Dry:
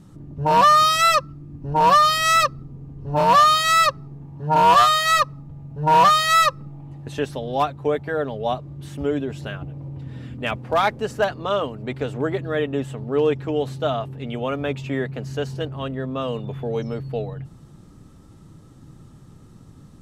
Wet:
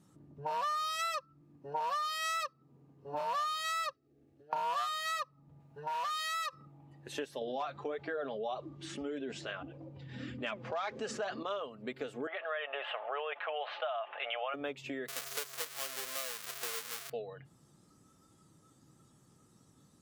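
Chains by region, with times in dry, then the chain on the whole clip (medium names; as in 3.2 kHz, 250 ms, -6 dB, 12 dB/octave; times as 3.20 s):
1.41–3.15 s: high-pass 94 Hz + bass shelf 240 Hz -6 dB
3.93–4.53 s: compression, threshold -35 dBFS + static phaser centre 400 Hz, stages 4
5.60–6.53 s: tilt shelf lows -4.5 dB, about 670 Hz + compression 4:1, threshold -27 dBFS
7.41–11.43 s: low-pass 7.8 kHz 24 dB/octave + flange 1.7 Hz, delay 1.8 ms, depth 4.7 ms, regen +59% + level flattener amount 70%
12.27–14.54 s: elliptic band-pass 640–3000 Hz, stop band 80 dB + level flattener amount 50%
15.08–17.10 s: square wave that keeps the level + tilt EQ +3.5 dB/octave
whole clip: compression 10:1, threshold -30 dBFS; high-pass 290 Hz 6 dB/octave; spectral noise reduction 10 dB; trim -2.5 dB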